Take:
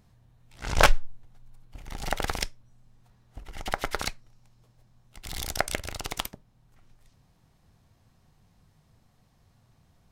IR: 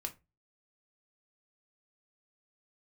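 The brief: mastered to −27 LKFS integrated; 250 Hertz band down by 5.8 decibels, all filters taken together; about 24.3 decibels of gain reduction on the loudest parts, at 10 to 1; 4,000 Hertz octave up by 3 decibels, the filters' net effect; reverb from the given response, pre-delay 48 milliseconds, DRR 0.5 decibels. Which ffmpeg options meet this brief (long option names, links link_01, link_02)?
-filter_complex "[0:a]equalizer=frequency=250:width_type=o:gain=-9,equalizer=frequency=4000:width_type=o:gain=4,acompressor=threshold=-38dB:ratio=10,asplit=2[link_01][link_02];[1:a]atrim=start_sample=2205,adelay=48[link_03];[link_02][link_03]afir=irnorm=-1:irlink=0,volume=0.5dB[link_04];[link_01][link_04]amix=inputs=2:normalize=0,volume=15.5dB"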